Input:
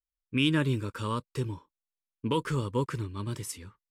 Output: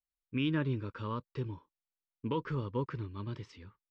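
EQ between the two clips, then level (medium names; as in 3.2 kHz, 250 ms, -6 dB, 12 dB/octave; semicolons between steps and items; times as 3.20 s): low-pass 5.2 kHz 24 dB/octave; dynamic bell 3.4 kHz, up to -4 dB, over -46 dBFS, Q 1.1; distance through air 130 m; -5.0 dB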